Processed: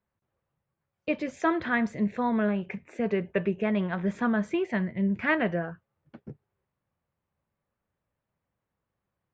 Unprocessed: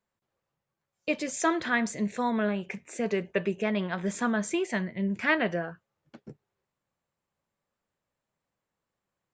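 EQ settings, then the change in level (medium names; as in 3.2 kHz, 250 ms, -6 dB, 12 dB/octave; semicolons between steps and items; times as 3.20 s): low-pass 2.6 kHz 12 dB/octave; peaking EQ 74 Hz +9 dB 2.1 oct; 0.0 dB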